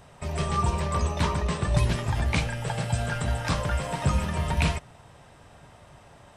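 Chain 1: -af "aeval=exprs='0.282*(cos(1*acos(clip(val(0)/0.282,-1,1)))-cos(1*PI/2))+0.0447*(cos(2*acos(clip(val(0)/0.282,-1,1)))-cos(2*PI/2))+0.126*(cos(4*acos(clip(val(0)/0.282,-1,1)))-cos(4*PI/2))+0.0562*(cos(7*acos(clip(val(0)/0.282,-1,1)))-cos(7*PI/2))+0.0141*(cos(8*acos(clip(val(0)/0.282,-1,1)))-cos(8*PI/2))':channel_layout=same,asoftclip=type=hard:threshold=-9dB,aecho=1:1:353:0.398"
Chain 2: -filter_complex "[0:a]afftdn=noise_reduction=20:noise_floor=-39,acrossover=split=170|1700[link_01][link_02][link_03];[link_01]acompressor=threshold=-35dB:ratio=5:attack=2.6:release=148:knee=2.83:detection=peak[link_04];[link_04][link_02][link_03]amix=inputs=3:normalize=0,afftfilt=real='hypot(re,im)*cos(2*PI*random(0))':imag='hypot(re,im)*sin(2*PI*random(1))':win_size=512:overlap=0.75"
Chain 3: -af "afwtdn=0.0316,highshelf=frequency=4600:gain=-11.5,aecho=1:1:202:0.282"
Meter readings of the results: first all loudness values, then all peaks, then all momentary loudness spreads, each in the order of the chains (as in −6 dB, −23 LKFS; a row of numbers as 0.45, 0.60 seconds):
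−26.0, −37.0, −28.0 LKFS; −6.0, −20.5, −11.5 dBFS; 7, 4, 5 LU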